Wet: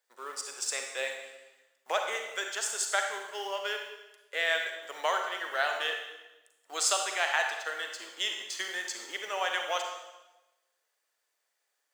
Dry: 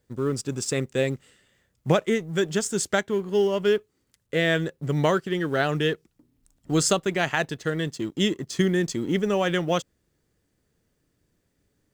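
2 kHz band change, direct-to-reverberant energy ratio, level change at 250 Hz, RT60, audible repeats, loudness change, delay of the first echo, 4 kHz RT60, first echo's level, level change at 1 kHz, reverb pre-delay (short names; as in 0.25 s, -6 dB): -1.5 dB, 3.0 dB, -30.0 dB, 1.0 s, none, -6.5 dB, none, 0.95 s, none, -2.0 dB, 35 ms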